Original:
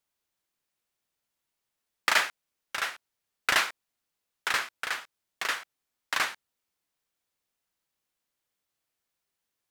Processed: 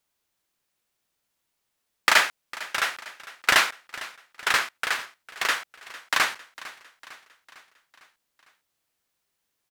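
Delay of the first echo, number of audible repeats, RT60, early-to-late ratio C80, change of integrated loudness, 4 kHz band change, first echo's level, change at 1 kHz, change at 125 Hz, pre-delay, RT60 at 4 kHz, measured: 453 ms, 4, no reverb, no reverb, +5.5 dB, +5.5 dB, -18.0 dB, +5.5 dB, +5.5 dB, no reverb, no reverb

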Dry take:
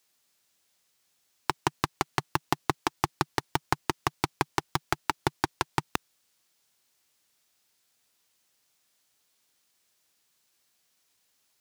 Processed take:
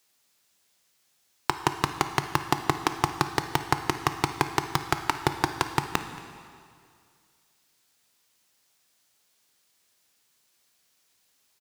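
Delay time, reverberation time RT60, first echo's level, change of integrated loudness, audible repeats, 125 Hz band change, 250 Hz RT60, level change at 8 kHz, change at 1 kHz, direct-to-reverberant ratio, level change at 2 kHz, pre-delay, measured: 227 ms, 2.2 s, -20.5 dB, +3.0 dB, 1, +3.5 dB, 2.2 s, +3.0 dB, +3.0 dB, 8.0 dB, +3.0 dB, 6 ms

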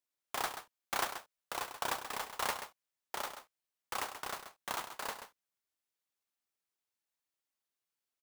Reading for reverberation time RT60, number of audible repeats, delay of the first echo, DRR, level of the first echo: no reverb, 1, 132 ms, no reverb, -10.0 dB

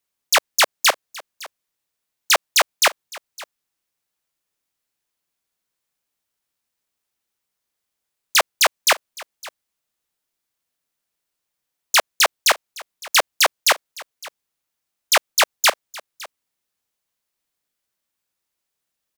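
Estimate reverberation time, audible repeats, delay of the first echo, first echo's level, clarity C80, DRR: no reverb, 1, 560 ms, -20.5 dB, no reverb, no reverb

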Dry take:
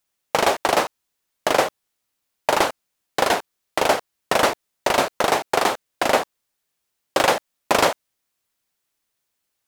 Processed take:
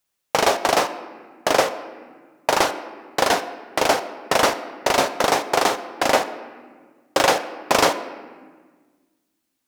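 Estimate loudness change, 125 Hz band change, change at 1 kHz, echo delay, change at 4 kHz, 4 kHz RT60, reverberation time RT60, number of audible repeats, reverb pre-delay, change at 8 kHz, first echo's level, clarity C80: +0.5 dB, 0.0 dB, +0.5 dB, no echo, +1.5 dB, 1.0 s, 1.6 s, no echo, 4 ms, +2.5 dB, no echo, 13.5 dB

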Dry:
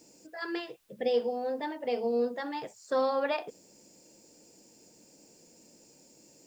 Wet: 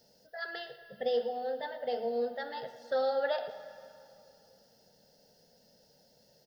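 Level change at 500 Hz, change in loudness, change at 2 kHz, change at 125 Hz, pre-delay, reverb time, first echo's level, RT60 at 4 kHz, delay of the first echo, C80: -2.0 dB, -2.5 dB, -1.0 dB, no reading, 29 ms, 2.7 s, -15.5 dB, 2.1 s, 114 ms, 10.5 dB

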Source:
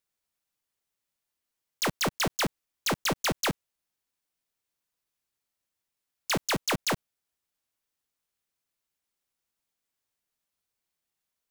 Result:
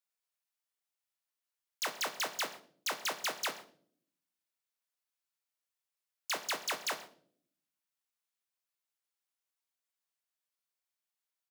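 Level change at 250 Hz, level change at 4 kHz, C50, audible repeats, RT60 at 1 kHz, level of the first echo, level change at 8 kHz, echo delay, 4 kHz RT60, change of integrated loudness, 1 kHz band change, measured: -20.0 dB, -6.0 dB, 12.5 dB, 1, 0.40 s, -21.0 dB, -6.0 dB, 133 ms, 0.40 s, -7.0 dB, -7.0 dB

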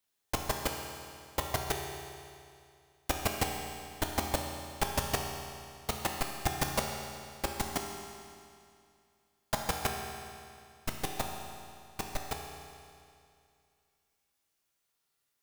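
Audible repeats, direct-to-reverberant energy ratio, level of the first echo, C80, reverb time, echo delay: no echo, 1.0 dB, no echo, 4.0 dB, 2.4 s, no echo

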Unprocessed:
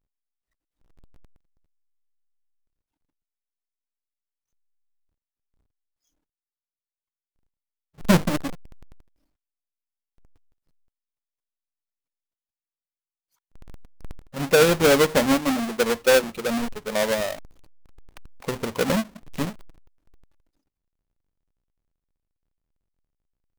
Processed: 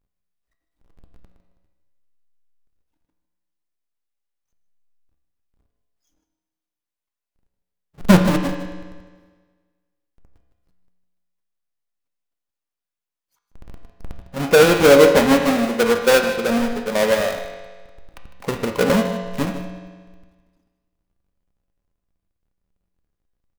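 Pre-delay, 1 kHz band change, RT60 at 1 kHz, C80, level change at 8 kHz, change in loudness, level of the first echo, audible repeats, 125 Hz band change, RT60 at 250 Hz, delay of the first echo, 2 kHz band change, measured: 4 ms, +5.5 dB, 1.5 s, 7.0 dB, +1.5 dB, +5.5 dB, -14.0 dB, 1, +5.5 dB, 1.5 s, 154 ms, +4.5 dB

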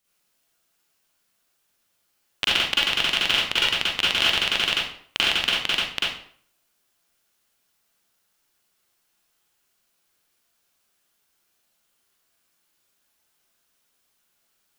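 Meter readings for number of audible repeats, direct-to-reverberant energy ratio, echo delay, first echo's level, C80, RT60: no echo, -7.5 dB, no echo, no echo, 5.0 dB, 0.55 s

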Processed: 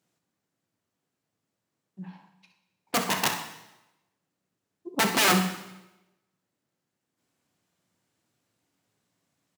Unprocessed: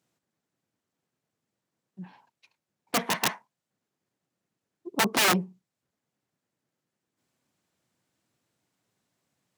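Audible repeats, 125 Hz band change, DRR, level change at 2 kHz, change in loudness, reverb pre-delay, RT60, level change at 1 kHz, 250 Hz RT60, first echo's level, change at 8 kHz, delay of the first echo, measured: 1, +3.0 dB, 4.5 dB, +1.0 dB, +1.0 dB, 6 ms, 0.95 s, +1.5 dB, 0.90 s, -11.5 dB, +1.5 dB, 64 ms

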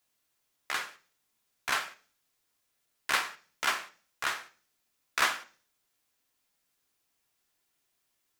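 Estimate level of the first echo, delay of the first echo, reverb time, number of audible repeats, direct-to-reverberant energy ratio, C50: no echo, no echo, 0.40 s, no echo, 7.0 dB, 17.5 dB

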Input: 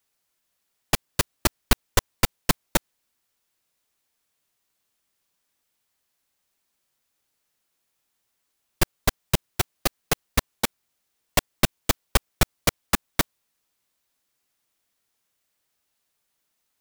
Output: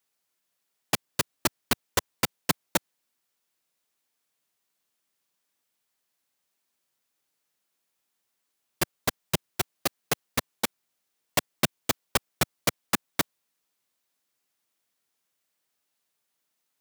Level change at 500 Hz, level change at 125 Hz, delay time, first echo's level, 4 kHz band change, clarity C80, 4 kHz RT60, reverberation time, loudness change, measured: -3.0 dB, -7.5 dB, no echo, no echo, -3.0 dB, no reverb, no reverb, no reverb, -3.5 dB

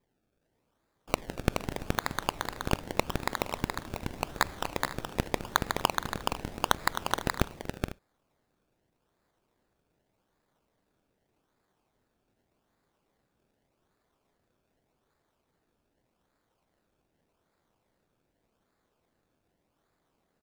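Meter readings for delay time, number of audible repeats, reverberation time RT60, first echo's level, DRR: 238 ms, 4, no reverb, -20.0 dB, no reverb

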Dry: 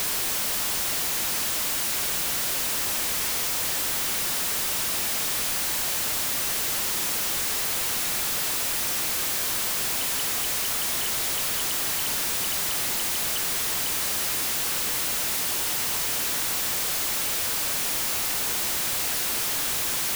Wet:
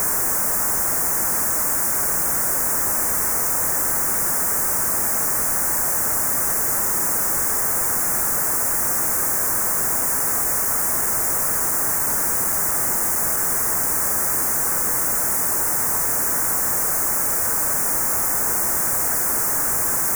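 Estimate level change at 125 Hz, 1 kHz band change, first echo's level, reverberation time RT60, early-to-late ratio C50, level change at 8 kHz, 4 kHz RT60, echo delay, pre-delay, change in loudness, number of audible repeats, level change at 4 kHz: +6.5 dB, +7.5 dB, no echo, no reverb, no reverb, +6.5 dB, no reverb, no echo, no reverb, +6.0 dB, no echo, -10.0 dB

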